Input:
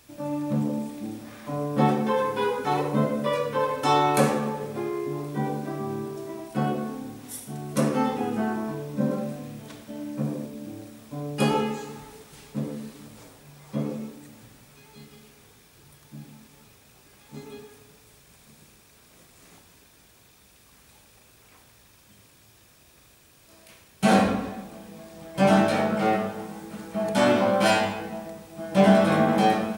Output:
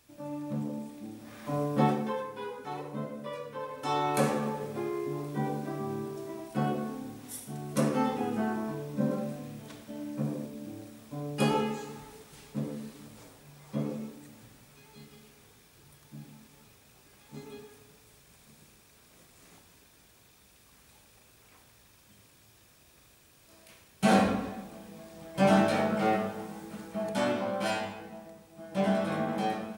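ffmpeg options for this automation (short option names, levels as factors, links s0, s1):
-af "volume=2.66,afade=t=in:st=1.16:d=0.39:silence=0.421697,afade=t=out:st=1.55:d=0.72:silence=0.237137,afade=t=in:st=3.69:d=0.77:silence=0.334965,afade=t=out:st=26.73:d=0.65:silence=0.473151"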